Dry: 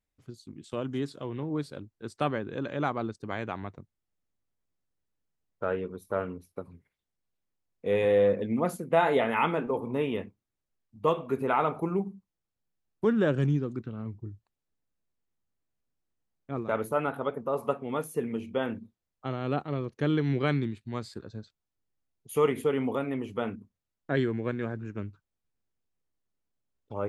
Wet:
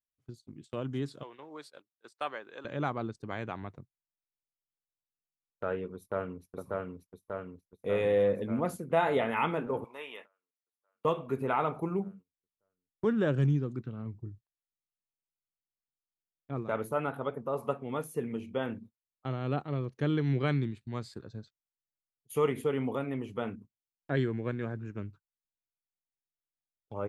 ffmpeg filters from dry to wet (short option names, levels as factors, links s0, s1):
-filter_complex "[0:a]asettb=1/sr,asplit=3[s0][s1][s2];[s0]atrim=end=1.234[s3];[s1]atrim=start=1.23:end=2.65,asetpts=PTS-STARTPTS,afade=t=in:d=0.004:c=qsin,afade=t=out:st=1.416:d=0.004:c=qsin,highpass=680[s4];[s2]atrim=start=2.646[s5];[s3][s4]acrossfade=d=0.004:c1=hsin:c2=qsin[s6];[s6][s5]acrossfade=d=0.004:c1=qsin:c2=hsin,asplit=2[s7][s8];[s8]afade=t=in:st=5.94:d=0.01,afade=t=out:st=6.47:d=0.01,aecho=0:1:590|1180|1770|2360|2950|3540|4130|4720|5310|5900|6490|7080:0.841395|0.588977|0.412284|0.288599|0.202019|0.141413|0.0989893|0.0692925|0.0485048|0.0339533|0.0237673|0.0166371[s9];[s7][s9]amix=inputs=2:normalize=0,asettb=1/sr,asplit=3[s10][s11][s12];[s10]atrim=end=9.844[s13];[s11]atrim=start=9.84:end=11.05,asetpts=PTS-STARTPTS,afade=t=in:d=0.004:c=qsin,afade=t=out:st=1.206:d=0.004:c=qsin,highpass=950[s14];[s12]atrim=start=11.046[s15];[s13][s14]acrossfade=d=0.004:c1=hsin:c2=qsin[s16];[s16][s15]acrossfade=d=0.004:c1=qsin:c2=hsin,agate=range=0.141:threshold=0.00447:ratio=16:detection=peak,equalizer=f=130:t=o:w=0.38:g=5,volume=0.668"